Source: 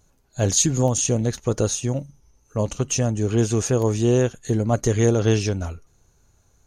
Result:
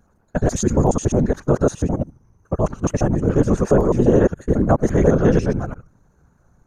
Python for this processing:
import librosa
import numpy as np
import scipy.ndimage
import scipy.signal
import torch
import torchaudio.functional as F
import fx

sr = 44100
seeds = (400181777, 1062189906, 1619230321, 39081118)

y = fx.local_reverse(x, sr, ms=70.0)
y = fx.high_shelf_res(y, sr, hz=2100.0, db=-12.5, q=1.5)
y = fx.whisperise(y, sr, seeds[0])
y = y * 10.0 ** (4.0 / 20.0)